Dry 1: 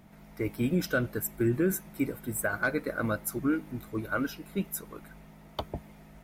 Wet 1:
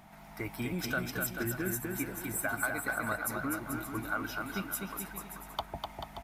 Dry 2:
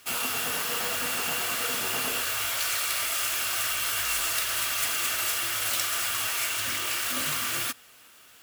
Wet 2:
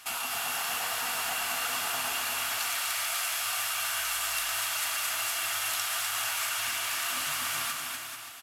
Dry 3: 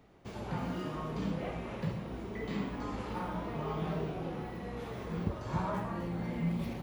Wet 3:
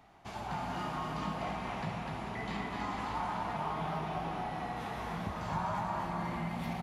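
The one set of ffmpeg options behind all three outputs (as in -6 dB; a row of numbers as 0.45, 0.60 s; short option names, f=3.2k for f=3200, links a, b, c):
-af "lowshelf=f=610:t=q:w=3:g=-6,acompressor=threshold=-40dB:ratio=2,aecho=1:1:250|437.5|578.1|683.6|762.7:0.631|0.398|0.251|0.158|0.1,aresample=32000,aresample=44100,volume=3.5dB"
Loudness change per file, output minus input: -4.0, -3.0, 0.0 LU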